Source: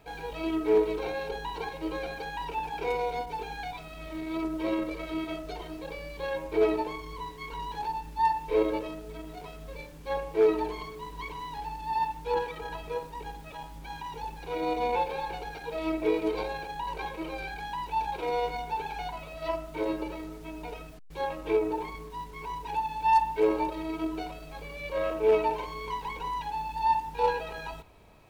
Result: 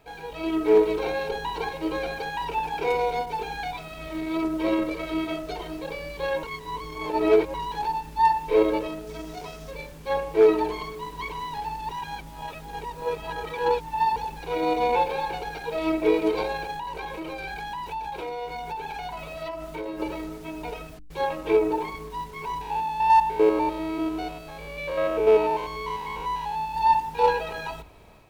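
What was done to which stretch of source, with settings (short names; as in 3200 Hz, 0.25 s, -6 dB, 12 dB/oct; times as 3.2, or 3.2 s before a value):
6.43–7.54 reverse
9.07–9.71 bell 5700 Hz +8 dB 0.66 oct
11.89–14.16 reverse
16.75–20 compressor, threshold -35 dBFS
22.61–26.75 stepped spectrum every 0.1 s
whole clip: AGC gain up to 5.5 dB; notches 50/100/150/200/250/300 Hz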